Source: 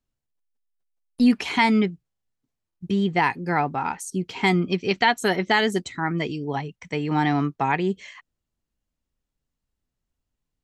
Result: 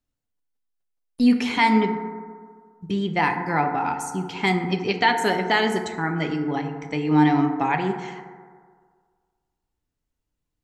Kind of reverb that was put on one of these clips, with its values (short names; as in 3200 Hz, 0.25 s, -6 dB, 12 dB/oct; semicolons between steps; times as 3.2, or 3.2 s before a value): FDN reverb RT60 1.8 s, low-frequency decay 0.85×, high-frequency decay 0.3×, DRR 4.5 dB; gain -1 dB